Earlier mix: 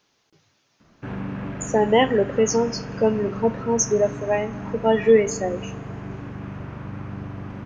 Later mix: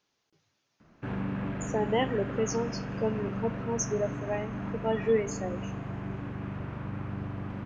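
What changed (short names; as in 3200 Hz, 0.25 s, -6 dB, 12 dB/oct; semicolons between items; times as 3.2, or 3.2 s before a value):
speech -10.5 dB; background: send off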